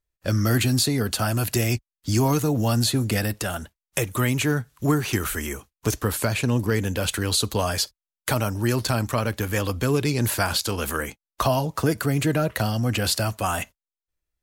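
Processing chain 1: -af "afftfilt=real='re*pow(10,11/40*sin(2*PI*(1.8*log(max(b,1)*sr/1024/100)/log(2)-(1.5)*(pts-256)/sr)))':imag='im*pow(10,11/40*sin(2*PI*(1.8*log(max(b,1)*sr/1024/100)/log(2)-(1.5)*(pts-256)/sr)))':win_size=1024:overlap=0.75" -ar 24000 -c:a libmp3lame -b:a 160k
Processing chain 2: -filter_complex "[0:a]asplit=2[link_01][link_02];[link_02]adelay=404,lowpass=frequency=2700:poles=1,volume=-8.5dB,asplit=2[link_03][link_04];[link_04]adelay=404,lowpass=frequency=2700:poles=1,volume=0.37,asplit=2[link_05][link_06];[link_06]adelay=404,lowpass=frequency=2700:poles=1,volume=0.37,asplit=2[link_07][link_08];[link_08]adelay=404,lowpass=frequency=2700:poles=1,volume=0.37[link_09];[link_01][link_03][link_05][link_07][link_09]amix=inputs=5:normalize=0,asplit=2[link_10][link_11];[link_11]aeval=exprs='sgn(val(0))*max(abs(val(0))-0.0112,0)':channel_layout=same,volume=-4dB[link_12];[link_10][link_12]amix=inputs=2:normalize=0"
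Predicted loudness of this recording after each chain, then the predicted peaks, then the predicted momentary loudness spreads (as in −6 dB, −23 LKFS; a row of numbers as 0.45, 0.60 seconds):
−23.0, −20.0 LKFS; −8.0, −5.0 dBFS; 8, 7 LU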